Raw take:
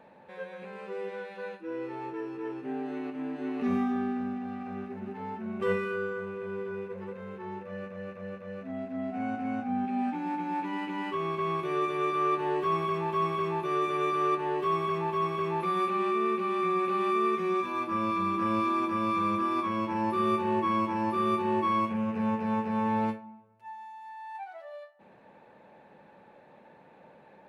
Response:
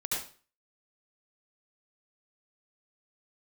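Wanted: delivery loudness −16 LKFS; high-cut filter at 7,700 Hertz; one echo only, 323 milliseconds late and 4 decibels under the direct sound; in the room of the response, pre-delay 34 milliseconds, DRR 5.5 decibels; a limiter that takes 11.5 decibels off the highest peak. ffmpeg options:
-filter_complex "[0:a]lowpass=7700,alimiter=level_in=3.5dB:limit=-24dB:level=0:latency=1,volume=-3.5dB,aecho=1:1:323:0.631,asplit=2[link_01][link_02];[1:a]atrim=start_sample=2205,adelay=34[link_03];[link_02][link_03]afir=irnorm=-1:irlink=0,volume=-10.5dB[link_04];[link_01][link_04]amix=inputs=2:normalize=0,volume=17.5dB"

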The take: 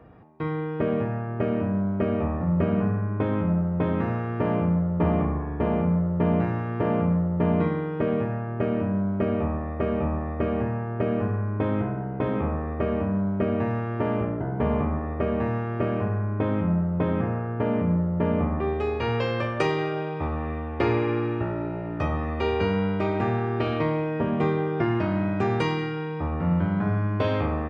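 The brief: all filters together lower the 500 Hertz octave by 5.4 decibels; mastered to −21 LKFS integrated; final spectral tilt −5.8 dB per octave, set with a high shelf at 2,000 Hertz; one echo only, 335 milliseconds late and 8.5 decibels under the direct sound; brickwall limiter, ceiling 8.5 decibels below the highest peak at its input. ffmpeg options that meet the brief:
ffmpeg -i in.wav -af "equalizer=frequency=500:width_type=o:gain=-7.5,highshelf=frequency=2000:gain=6.5,alimiter=limit=-18.5dB:level=0:latency=1,aecho=1:1:335:0.376,volume=7dB" out.wav

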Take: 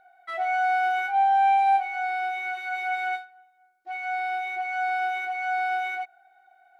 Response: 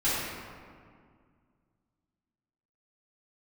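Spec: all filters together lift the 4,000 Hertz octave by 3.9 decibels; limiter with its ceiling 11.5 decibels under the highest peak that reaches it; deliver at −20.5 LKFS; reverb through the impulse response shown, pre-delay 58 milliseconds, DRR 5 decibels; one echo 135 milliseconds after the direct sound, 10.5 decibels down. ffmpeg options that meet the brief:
-filter_complex "[0:a]equalizer=frequency=4000:width_type=o:gain=5,alimiter=level_in=1dB:limit=-24dB:level=0:latency=1,volume=-1dB,aecho=1:1:135:0.299,asplit=2[link_01][link_02];[1:a]atrim=start_sample=2205,adelay=58[link_03];[link_02][link_03]afir=irnorm=-1:irlink=0,volume=-17dB[link_04];[link_01][link_04]amix=inputs=2:normalize=0,volume=11dB"

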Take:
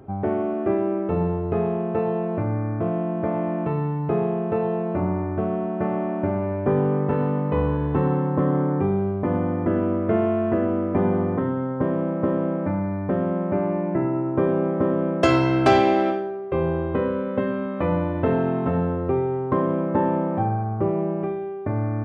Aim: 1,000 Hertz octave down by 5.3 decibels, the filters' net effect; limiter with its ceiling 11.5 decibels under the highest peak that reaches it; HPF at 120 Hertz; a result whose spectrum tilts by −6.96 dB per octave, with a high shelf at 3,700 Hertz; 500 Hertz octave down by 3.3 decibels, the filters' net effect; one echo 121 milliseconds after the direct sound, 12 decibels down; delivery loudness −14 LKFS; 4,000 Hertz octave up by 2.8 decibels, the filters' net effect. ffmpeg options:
ffmpeg -i in.wav -af "highpass=120,equalizer=frequency=500:width_type=o:gain=-3,equalizer=frequency=1000:width_type=o:gain=-6,highshelf=frequency=3700:gain=-5.5,equalizer=frequency=4000:width_type=o:gain=7.5,alimiter=limit=-18dB:level=0:latency=1,aecho=1:1:121:0.251,volume=13.5dB" out.wav

